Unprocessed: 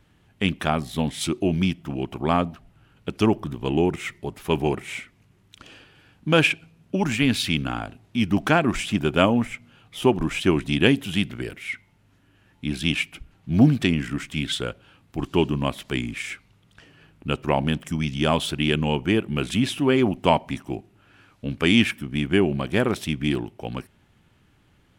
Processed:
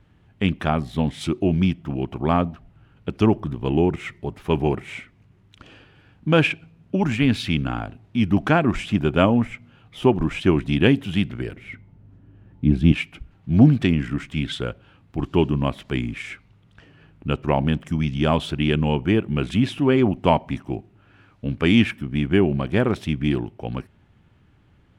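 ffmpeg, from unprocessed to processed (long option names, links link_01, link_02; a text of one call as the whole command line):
ffmpeg -i in.wav -filter_complex "[0:a]asettb=1/sr,asplit=3[link_01][link_02][link_03];[link_01]atrim=end=11.564[link_04];[link_02]atrim=start=11.56:end=12.92,asetpts=PTS-STARTPTS,afade=type=in:duration=0.004:curve=qsin,afade=type=out:start_time=1.356:duration=0.004:curve=qsin,tiltshelf=frequency=830:gain=8.5[link_05];[link_03]atrim=start=12.916[link_06];[link_04][link_05]acrossfade=duration=0.004:curve1=hsin:curve2=qsin[link_07];[link_07][link_06]acrossfade=duration=0.004:curve1=qsin:curve2=hsin,lowpass=frequency=2400:poles=1,equalizer=frequency=79:width=0.62:gain=4.5,volume=1dB" out.wav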